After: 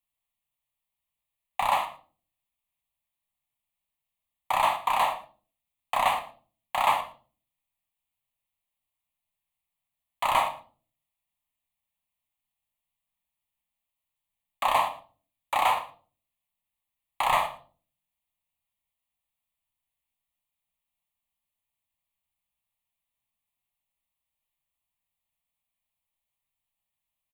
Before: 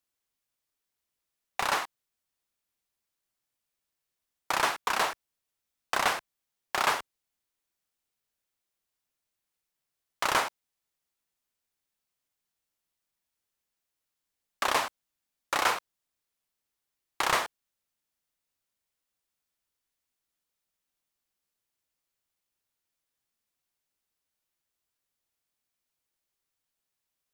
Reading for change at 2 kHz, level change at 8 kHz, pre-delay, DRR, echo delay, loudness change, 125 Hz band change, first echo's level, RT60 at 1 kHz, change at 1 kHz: -2.5 dB, -6.0 dB, 16 ms, 5.5 dB, 114 ms, +2.5 dB, +1.0 dB, -18.5 dB, 0.35 s, +5.5 dB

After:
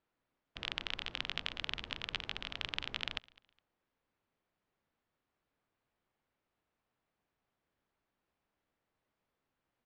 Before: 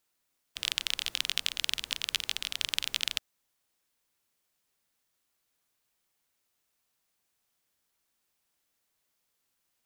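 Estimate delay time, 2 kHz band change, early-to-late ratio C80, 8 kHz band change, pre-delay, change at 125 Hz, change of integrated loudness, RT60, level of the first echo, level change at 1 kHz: 207 ms, -4.5 dB, no reverb, -23.0 dB, no reverb, +4.5 dB, -8.5 dB, no reverb, -24.0 dB, +0.5 dB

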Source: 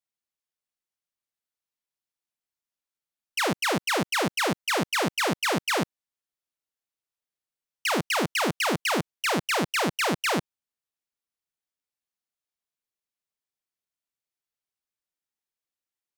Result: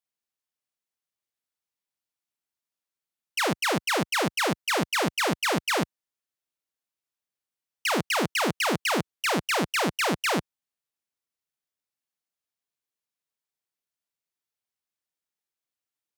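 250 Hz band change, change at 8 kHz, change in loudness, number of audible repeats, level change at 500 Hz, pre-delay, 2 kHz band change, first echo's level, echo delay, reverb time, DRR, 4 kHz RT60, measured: 0.0 dB, 0.0 dB, 0.0 dB, no echo, 0.0 dB, no reverb, 0.0 dB, no echo, no echo, no reverb, no reverb, no reverb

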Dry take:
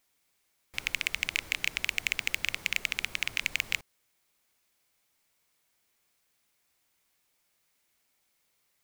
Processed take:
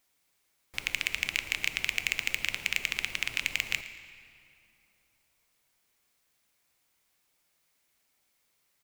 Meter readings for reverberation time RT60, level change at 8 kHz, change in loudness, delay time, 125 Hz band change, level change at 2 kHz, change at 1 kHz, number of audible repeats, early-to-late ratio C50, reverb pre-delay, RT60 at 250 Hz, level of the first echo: 2.9 s, +0.5 dB, +0.5 dB, 114 ms, +1.0 dB, +0.5 dB, +0.5 dB, 2, 11.0 dB, 3 ms, 3.1 s, -18.5 dB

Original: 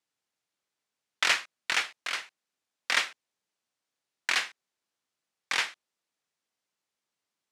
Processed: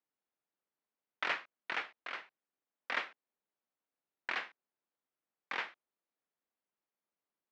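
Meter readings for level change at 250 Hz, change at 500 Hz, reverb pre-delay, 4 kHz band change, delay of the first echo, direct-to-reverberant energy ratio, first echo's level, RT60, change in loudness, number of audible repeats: -3.5 dB, -4.0 dB, no reverb, -15.0 dB, no echo, no reverb, no echo, no reverb, -10.5 dB, no echo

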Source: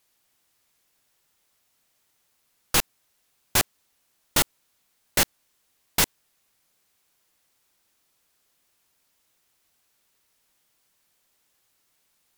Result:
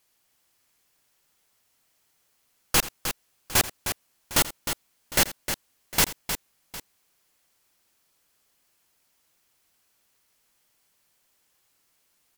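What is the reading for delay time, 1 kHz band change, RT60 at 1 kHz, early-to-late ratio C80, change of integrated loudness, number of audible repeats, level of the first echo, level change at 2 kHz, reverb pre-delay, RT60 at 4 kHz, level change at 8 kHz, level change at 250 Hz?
84 ms, +0.5 dB, no reverb, no reverb, -1.5 dB, 3, -17.0 dB, +0.5 dB, no reverb, no reverb, +0.5 dB, +0.5 dB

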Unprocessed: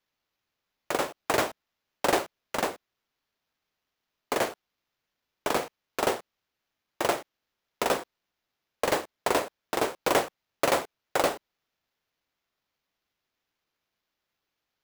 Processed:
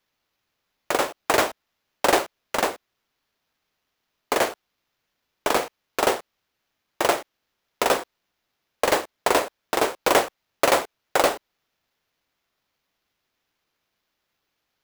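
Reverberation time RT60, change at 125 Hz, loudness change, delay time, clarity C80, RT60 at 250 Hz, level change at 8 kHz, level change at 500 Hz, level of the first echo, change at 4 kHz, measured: no reverb, +1.0 dB, +5.5 dB, no echo, no reverb, no reverb, +6.0 dB, +5.0 dB, no echo, +6.0 dB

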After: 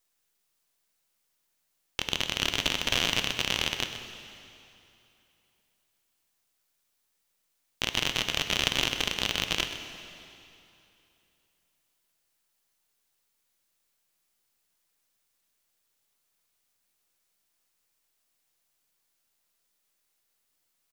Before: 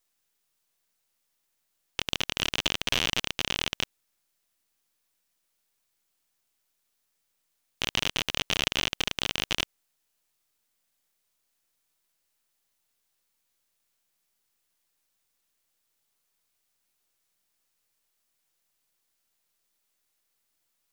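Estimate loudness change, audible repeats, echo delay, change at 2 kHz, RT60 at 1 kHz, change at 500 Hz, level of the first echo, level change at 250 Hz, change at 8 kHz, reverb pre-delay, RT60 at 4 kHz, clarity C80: +1.0 dB, 1, 127 ms, +1.0 dB, 2.9 s, +1.0 dB, -12.0 dB, +1.0 dB, +1.0 dB, 5 ms, 2.7 s, 7.5 dB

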